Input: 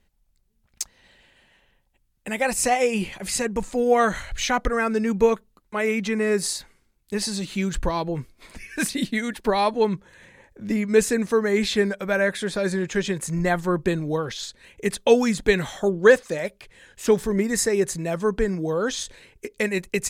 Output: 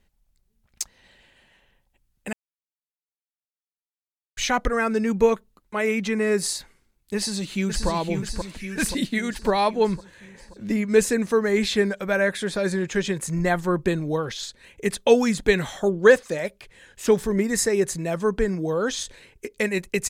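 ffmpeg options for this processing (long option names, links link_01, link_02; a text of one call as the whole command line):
ffmpeg -i in.wav -filter_complex "[0:a]asplit=2[link_01][link_02];[link_02]afade=type=in:start_time=7.16:duration=0.01,afade=type=out:start_time=7.88:duration=0.01,aecho=0:1:530|1060|1590|2120|2650|3180|3710|4240:0.562341|0.337405|0.202443|0.121466|0.0728794|0.0437277|0.0262366|0.015742[link_03];[link_01][link_03]amix=inputs=2:normalize=0,asplit=3[link_04][link_05][link_06];[link_04]atrim=end=2.33,asetpts=PTS-STARTPTS,afade=type=out:start_time=2.326:duration=0.004:curve=hsin[link_07];[link_05]atrim=start=2.33:end=4.37,asetpts=PTS-STARTPTS,volume=0[link_08];[link_06]atrim=start=4.37,asetpts=PTS-STARTPTS,afade=type=in:duration=0.004:curve=hsin[link_09];[link_07][link_08][link_09]concat=n=3:v=0:a=1" out.wav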